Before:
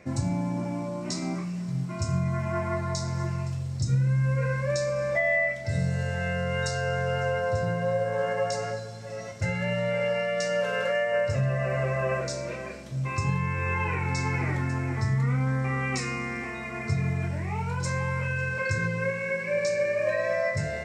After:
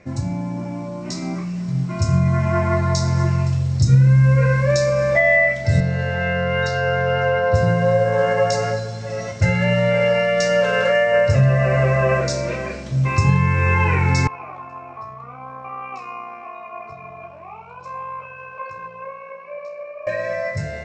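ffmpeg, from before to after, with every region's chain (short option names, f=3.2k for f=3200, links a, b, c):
-filter_complex "[0:a]asettb=1/sr,asplit=3[a][b][c];[a]atrim=end=5.804[d];[b]atrim=start=5.8:end=7.54,asetpts=PTS-STARTPTS,afade=t=in:d=0.004:c=qsin,afade=t=out:st=1.736:d=0.004:c=qsin,lowpass=3.6k,lowshelf=f=140:g=-10.5[e];[c]atrim=start=7.536[f];[d][e]acrossfade=d=0.004:c1=hsin:c2=qsin[g];[g][f]acrossfade=d=0.004:c1=qsin:c2=hsin,asettb=1/sr,asplit=3[h][i][j];[h]atrim=end=14.274[k];[i]atrim=start=14.27:end=20.07,asetpts=PTS-STARTPTS,afade=t=in:d=0.004:c=qsin,afade=t=out:st=5.796:d=0.004:c=qsin,asplit=3[l][m][n];[l]bandpass=f=730:t=q:w=8,volume=0dB[o];[m]bandpass=f=1.09k:t=q:w=8,volume=-6dB[p];[n]bandpass=f=2.44k:t=q:w=8,volume=-9dB[q];[o][p][q]amix=inputs=3:normalize=0,equalizer=f=1.1k:t=o:w=0.32:g=9,tremolo=f=61:d=0.4[r];[j]atrim=start=20.066[s];[k][r]acrossfade=d=0.004:c1=hsin:c2=qsin[t];[t][s]acrossfade=d=0.004:c1=qsin:c2=hsin,lowpass=f=7.4k:w=0.5412,lowpass=f=7.4k:w=1.3066,lowshelf=f=85:g=7,dynaudnorm=f=210:g=17:m=8dB,volume=1.5dB"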